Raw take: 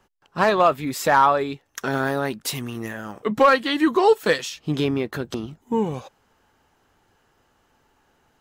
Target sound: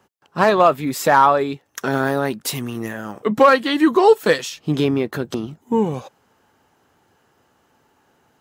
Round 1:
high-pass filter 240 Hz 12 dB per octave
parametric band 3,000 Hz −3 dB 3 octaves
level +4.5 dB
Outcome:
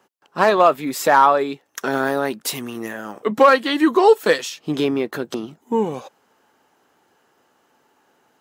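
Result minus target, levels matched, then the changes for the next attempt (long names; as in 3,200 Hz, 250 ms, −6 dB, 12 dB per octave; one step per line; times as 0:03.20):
125 Hz band −8.0 dB
change: high-pass filter 99 Hz 12 dB per octave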